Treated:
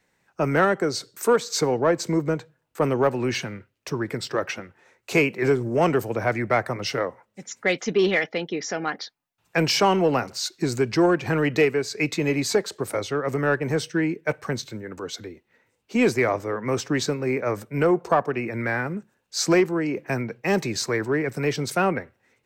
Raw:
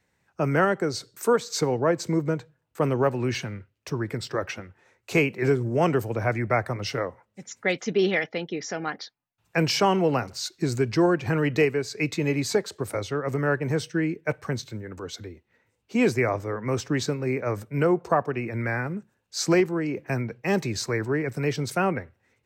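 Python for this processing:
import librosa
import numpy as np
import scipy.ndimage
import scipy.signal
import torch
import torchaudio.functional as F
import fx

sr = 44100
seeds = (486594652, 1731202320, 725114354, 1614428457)

p1 = 10.0 ** (-19.5 / 20.0) * np.tanh(x / 10.0 ** (-19.5 / 20.0))
p2 = x + (p1 * 10.0 ** (-5.5 / 20.0))
y = fx.peak_eq(p2, sr, hz=79.0, db=-10.0, octaves=1.4)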